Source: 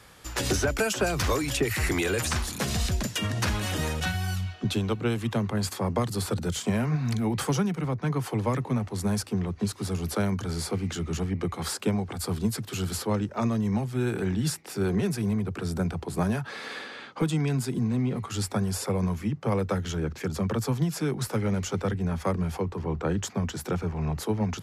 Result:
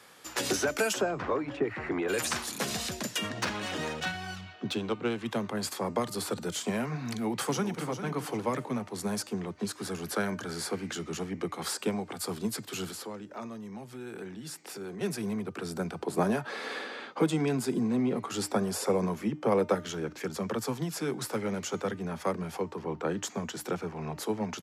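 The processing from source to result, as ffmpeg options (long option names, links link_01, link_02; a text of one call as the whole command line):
ffmpeg -i in.wav -filter_complex "[0:a]asplit=3[link_01][link_02][link_03];[link_01]afade=type=out:start_time=1:duration=0.02[link_04];[link_02]lowpass=1400,afade=type=in:start_time=1:duration=0.02,afade=type=out:start_time=2.08:duration=0.02[link_05];[link_03]afade=type=in:start_time=2.08:duration=0.02[link_06];[link_04][link_05][link_06]amix=inputs=3:normalize=0,asettb=1/sr,asplit=3[link_07][link_08][link_09];[link_07]atrim=end=3.294[link_10];[link_08]atrim=start=3.29:end=5.26,asetpts=PTS-STARTPTS,afade=type=in:duration=0.004:curve=qsin,afade=type=out:start_time=1.966:duration=0.004:curve=qsin,adynamicsmooth=sensitivity=4.5:basefreq=4800[link_11];[link_09]atrim=start=5.256[link_12];[link_10][link_11]acrossfade=duration=0.004:curve1=hsin:curve2=qsin[link_13];[link_13][link_12]acrossfade=duration=0.004:curve1=qsin:curve2=hsin,asplit=2[link_14][link_15];[link_15]afade=type=in:start_time=7.08:duration=0.01,afade=type=out:start_time=7.85:duration=0.01,aecho=0:1:400|800|1200|1600:0.316228|0.11068|0.0387379|0.0135583[link_16];[link_14][link_16]amix=inputs=2:normalize=0,asettb=1/sr,asplit=3[link_17][link_18][link_19];[link_17]atrim=end=9.694[link_20];[link_18]atrim=start=9.69:end=10.93,asetpts=PTS-STARTPTS,afade=type=in:duration=0.004:curve=qsin,afade=type=out:start_time=1.236:duration=0.004:curve=qsin,equalizer=frequency=1600:width_type=o:width=0.31:gain=7.5[link_21];[link_19]atrim=start=10.926[link_22];[link_20][link_21]acrossfade=duration=0.004:curve1=hsin:curve2=qsin[link_23];[link_23][link_22]acrossfade=duration=0.004:curve1=qsin:curve2=hsin,asettb=1/sr,asplit=3[link_24][link_25][link_26];[link_24]atrim=end=12.914[link_27];[link_25]atrim=start=12.91:end=15.01,asetpts=PTS-STARTPTS,afade=type=in:duration=0.004:curve=qsin,afade=type=out:start_time=2.096:duration=0.004:curve=qsin,acompressor=threshold=-37dB:ratio=2.5:attack=3.2:release=140:knee=1:detection=peak[link_28];[link_26]atrim=start=15.006[link_29];[link_27][link_28]acrossfade=duration=0.004:curve1=hsin:curve2=qsin[link_30];[link_30][link_29]acrossfade=duration=0.004:curve1=qsin:curve2=hsin,asettb=1/sr,asplit=3[link_31][link_32][link_33];[link_31]atrim=end=16.004[link_34];[link_32]atrim=start=16:end=19.75,asetpts=PTS-STARTPTS,afade=type=in:duration=0.004:curve=qsin,afade=type=out:start_time=3.746:duration=0.004:curve=qsin,equalizer=frequency=430:width=0.43:gain=5.5[link_35];[link_33]atrim=start=19.746[link_36];[link_34][link_35]acrossfade=duration=0.004:curve1=hsin:curve2=qsin[link_37];[link_37][link_36]acrossfade=duration=0.004:curve1=qsin:curve2=hsin,highpass=230,bandreject=frequency=303:width_type=h:width=4,bandreject=frequency=606:width_type=h:width=4,bandreject=frequency=909:width_type=h:width=4,bandreject=frequency=1212:width_type=h:width=4,bandreject=frequency=1515:width_type=h:width=4,bandreject=frequency=1818:width_type=h:width=4,bandreject=frequency=2121:width_type=h:width=4,bandreject=frequency=2424:width_type=h:width=4,bandreject=frequency=2727:width_type=h:width=4,bandreject=frequency=3030:width_type=h:width=4,bandreject=frequency=3333:width_type=h:width=4,bandreject=frequency=3636:width_type=h:width=4,bandreject=frequency=3939:width_type=h:width=4,bandreject=frequency=4242:width_type=h:width=4,bandreject=frequency=4545:width_type=h:width=4,bandreject=frequency=4848:width_type=h:width=4,bandreject=frequency=5151:width_type=h:width=4,bandreject=frequency=5454:width_type=h:width=4,bandreject=frequency=5757:width_type=h:width=4,bandreject=frequency=6060:width_type=h:width=4,bandreject=frequency=6363:width_type=h:width=4,bandreject=frequency=6666:width_type=h:width=4,bandreject=frequency=6969:width_type=h:width=4,bandreject=frequency=7272:width_type=h:width=4,bandreject=frequency=7575:width_type=h:width=4,bandreject=frequency=7878:width_type=h:width=4,bandreject=frequency=8181:width_type=h:width=4,bandreject=frequency=8484:width_type=h:width=4,volume=-1.5dB" out.wav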